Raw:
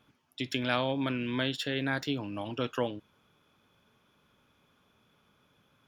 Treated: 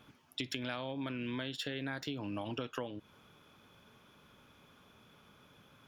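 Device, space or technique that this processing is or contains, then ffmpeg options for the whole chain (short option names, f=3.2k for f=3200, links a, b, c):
serial compression, leveller first: -af "acompressor=threshold=-36dB:ratio=1.5,acompressor=threshold=-42dB:ratio=6,volume=6dB"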